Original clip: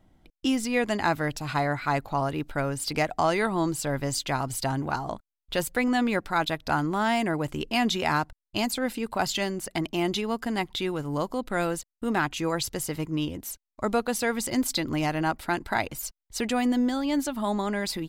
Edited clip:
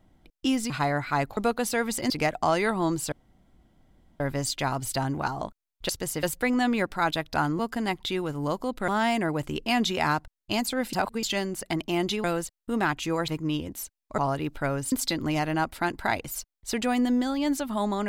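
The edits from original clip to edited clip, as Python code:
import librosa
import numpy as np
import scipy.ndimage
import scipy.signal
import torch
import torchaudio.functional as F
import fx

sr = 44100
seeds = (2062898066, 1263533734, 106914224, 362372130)

y = fx.edit(x, sr, fx.cut(start_s=0.7, length_s=0.75),
    fx.swap(start_s=2.12, length_s=0.74, other_s=13.86, other_length_s=0.73),
    fx.insert_room_tone(at_s=3.88, length_s=1.08),
    fx.reverse_span(start_s=8.98, length_s=0.3),
    fx.move(start_s=10.29, length_s=1.29, to_s=6.93),
    fx.move(start_s=12.62, length_s=0.34, to_s=5.57), tone=tone)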